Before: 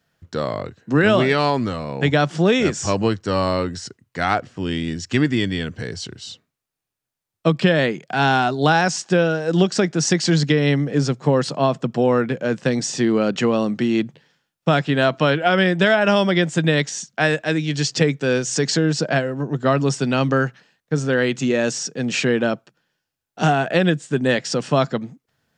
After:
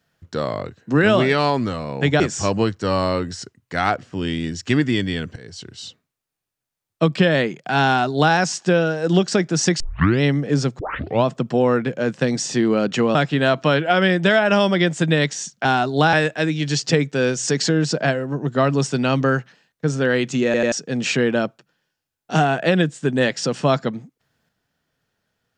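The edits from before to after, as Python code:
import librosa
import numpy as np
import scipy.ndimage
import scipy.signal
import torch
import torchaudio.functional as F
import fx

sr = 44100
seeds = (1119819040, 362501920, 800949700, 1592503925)

y = fx.edit(x, sr, fx.cut(start_s=2.2, length_s=0.44),
    fx.fade_in_from(start_s=5.8, length_s=0.48, floor_db=-16.0),
    fx.duplicate(start_s=8.3, length_s=0.48, to_s=17.21),
    fx.tape_start(start_s=10.24, length_s=0.41),
    fx.tape_start(start_s=11.23, length_s=0.46),
    fx.cut(start_s=13.59, length_s=1.12),
    fx.stutter_over(start_s=21.53, slice_s=0.09, count=3), tone=tone)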